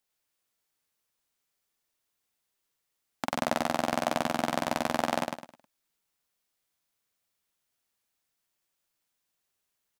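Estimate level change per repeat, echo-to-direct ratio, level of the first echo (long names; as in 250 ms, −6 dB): −10.0 dB, −3.5 dB, −4.0 dB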